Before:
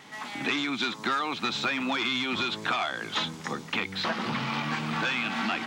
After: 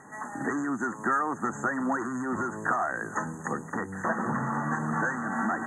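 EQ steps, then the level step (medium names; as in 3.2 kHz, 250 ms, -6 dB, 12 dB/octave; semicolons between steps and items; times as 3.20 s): brick-wall FIR band-stop 2–6.2 kHz; Butterworth band-stop 2.1 kHz, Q 5.2; low-pass 11 kHz 24 dB/octave; +2.0 dB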